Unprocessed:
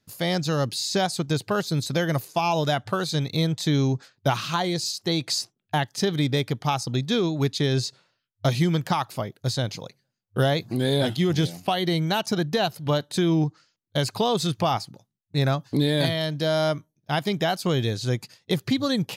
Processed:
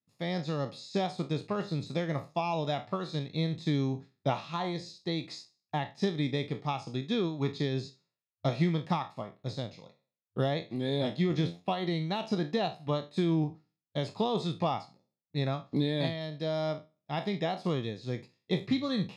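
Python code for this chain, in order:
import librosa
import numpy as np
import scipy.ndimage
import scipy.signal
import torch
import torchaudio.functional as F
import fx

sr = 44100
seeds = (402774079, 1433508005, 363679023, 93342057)

y = fx.spec_trails(x, sr, decay_s=0.39)
y = scipy.signal.sosfilt(scipy.signal.butter(2, 4400.0, 'lowpass', fs=sr, output='sos'), y)
y = fx.peak_eq(y, sr, hz=190.0, db=5.0, octaves=1.3)
y = fx.notch_comb(y, sr, f0_hz=1500.0)
y = fx.upward_expand(y, sr, threshold_db=-46.0, expansion=1.5)
y = y * librosa.db_to_amplitude(-6.5)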